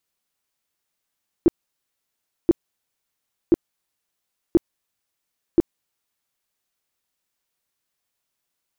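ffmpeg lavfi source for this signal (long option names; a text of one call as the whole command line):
ffmpeg -f lavfi -i "aevalsrc='0.355*sin(2*PI*338*mod(t,1.03))*lt(mod(t,1.03),7/338)':duration=5.15:sample_rate=44100" out.wav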